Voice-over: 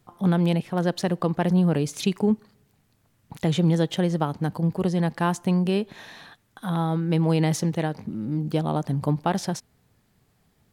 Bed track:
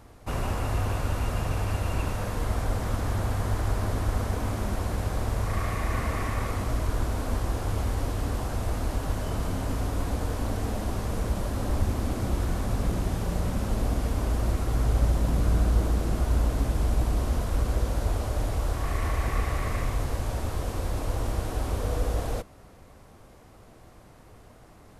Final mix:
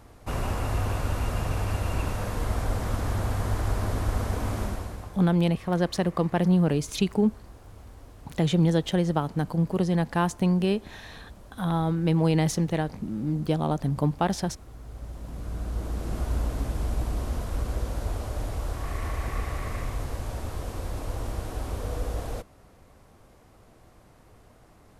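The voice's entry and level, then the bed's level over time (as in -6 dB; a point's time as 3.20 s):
4.95 s, -1.0 dB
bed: 4.63 s 0 dB
5.33 s -19 dB
14.81 s -19 dB
16.18 s -3.5 dB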